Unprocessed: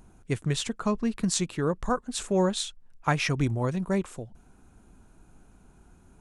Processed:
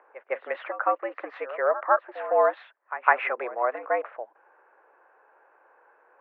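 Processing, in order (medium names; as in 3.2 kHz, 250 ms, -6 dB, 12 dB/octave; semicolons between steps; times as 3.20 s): pre-echo 157 ms -14.5 dB; mistuned SSB +110 Hz 440–2000 Hz; trim +7.5 dB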